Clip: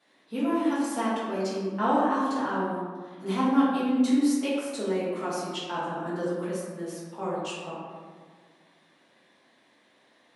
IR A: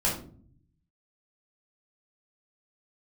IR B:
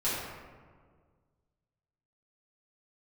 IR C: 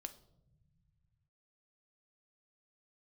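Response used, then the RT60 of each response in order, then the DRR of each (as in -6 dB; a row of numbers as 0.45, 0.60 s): B; 0.50 s, 1.7 s, not exponential; -6.0, -12.0, 8.0 dB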